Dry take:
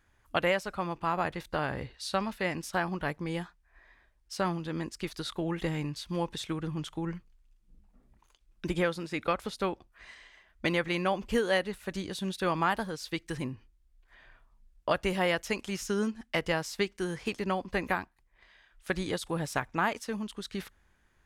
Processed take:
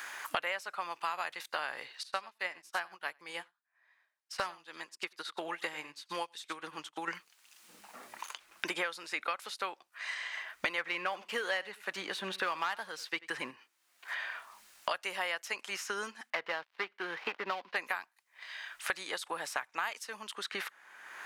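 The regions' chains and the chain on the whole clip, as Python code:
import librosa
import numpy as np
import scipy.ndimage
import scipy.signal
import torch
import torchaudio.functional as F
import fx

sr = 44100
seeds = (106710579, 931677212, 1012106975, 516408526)

y = fx.chain(x, sr, fx.echo_single(ms=90, db=-13.5),
    fx.upward_expand(threshold_db=-50.0, expansion=2.5), at=(2.03, 7.08))
y = fx.chain(y, sr, fx.bass_treble(bass_db=4, treble_db=-9),
    fx.leveller(passes=1),
    fx.echo_single(ms=89, db=-21.5), at=(10.78, 13.51))
y = fx.chain(y, sr, fx.dead_time(dead_ms=0.13),
    fx.air_absorb(metres=340.0), at=(16.3, 17.76))
y = scipy.signal.sosfilt(scipy.signal.butter(2, 960.0, 'highpass', fs=sr, output='sos'), y)
y = fx.notch(y, sr, hz=3400.0, q=28.0)
y = fx.band_squash(y, sr, depth_pct=100)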